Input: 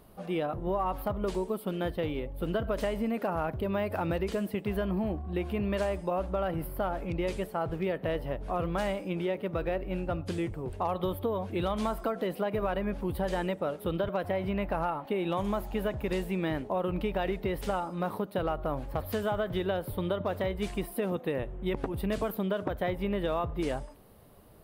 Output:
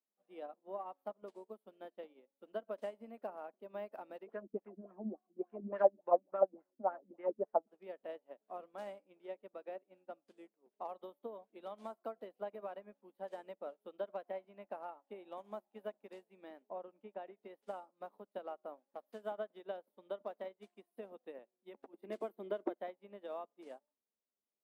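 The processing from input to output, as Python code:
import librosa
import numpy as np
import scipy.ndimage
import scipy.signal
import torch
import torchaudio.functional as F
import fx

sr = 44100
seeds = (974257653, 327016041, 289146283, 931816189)

y = fx.filter_lfo_lowpass(x, sr, shape='sine', hz=3.5, low_hz=210.0, high_hz=1800.0, q=3.4, at=(4.26, 7.66), fade=0.02)
y = fx.air_absorb(y, sr, metres=270.0, at=(16.68, 17.37))
y = fx.small_body(y, sr, hz=(350.0, 2100.0), ring_ms=65, db=14, at=(21.93, 22.8))
y = scipy.signal.sosfilt(scipy.signal.ellip(4, 1.0, 40, 210.0, 'highpass', fs=sr, output='sos'), y)
y = fx.dynamic_eq(y, sr, hz=670.0, q=1.3, threshold_db=-44.0, ratio=4.0, max_db=7)
y = fx.upward_expand(y, sr, threshold_db=-41.0, expansion=2.5)
y = y * librosa.db_to_amplitude(-5.0)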